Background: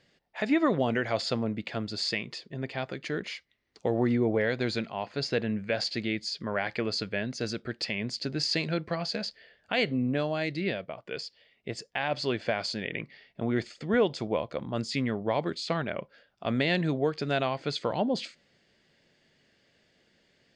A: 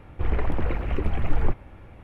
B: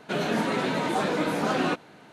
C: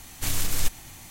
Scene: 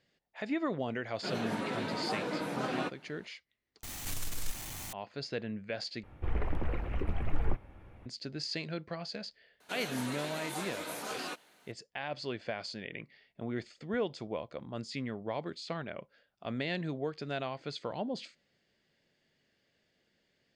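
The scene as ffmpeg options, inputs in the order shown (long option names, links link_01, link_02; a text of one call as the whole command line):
ffmpeg -i bed.wav -i cue0.wav -i cue1.wav -i cue2.wav -filter_complex "[2:a]asplit=2[link_01][link_02];[0:a]volume=-8.5dB[link_03];[link_01]bandreject=frequency=6600:width=22[link_04];[3:a]aeval=exprs='val(0)+0.5*0.0631*sgn(val(0))':channel_layout=same[link_05];[link_02]aemphasis=mode=production:type=riaa[link_06];[link_03]asplit=3[link_07][link_08][link_09];[link_07]atrim=end=3.834[link_10];[link_05]atrim=end=1.1,asetpts=PTS-STARTPTS,volume=-13.5dB[link_11];[link_08]atrim=start=4.926:end=6.034[link_12];[1:a]atrim=end=2.03,asetpts=PTS-STARTPTS,volume=-8dB[link_13];[link_09]atrim=start=8.056[link_14];[link_04]atrim=end=2.12,asetpts=PTS-STARTPTS,volume=-9.5dB,afade=type=in:duration=0.004:curve=hsin,afade=type=out:start_time=2.116:duration=0.004:curve=hsin,adelay=1140[link_15];[link_06]atrim=end=2.12,asetpts=PTS-STARTPTS,volume=-13.5dB,afade=type=in:duration=0.004:curve=hsin,afade=type=out:start_time=2.116:duration=0.004:curve=hsin,adelay=9600[link_16];[link_10][link_11]acrossfade=duration=0.004:curve1=hsin:curve2=hsin[link_17];[link_17][link_12]acrossfade=duration=0.004:curve1=hsin:curve2=hsin[link_18];[link_18][link_13]acrossfade=duration=0.004:curve1=hsin:curve2=hsin[link_19];[link_19][link_14]acrossfade=duration=0.004:curve1=hsin:curve2=hsin[link_20];[link_20][link_15][link_16]amix=inputs=3:normalize=0" out.wav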